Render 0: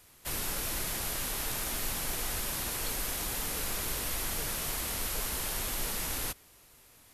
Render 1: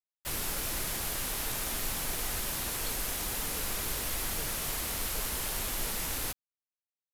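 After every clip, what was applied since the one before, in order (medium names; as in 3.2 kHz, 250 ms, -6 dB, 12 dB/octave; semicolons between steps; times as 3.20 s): bit crusher 7-bit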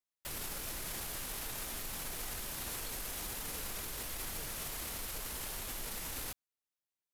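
peak limiter -32 dBFS, peak gain reduction 11 dB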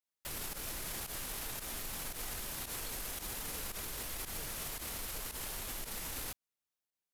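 volume shaper 113 bpm, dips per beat 1, -13 dB, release 74 ms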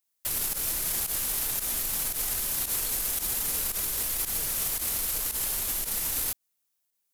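treble shelf 5.7 kHz +12 dB; trim +4.5 dB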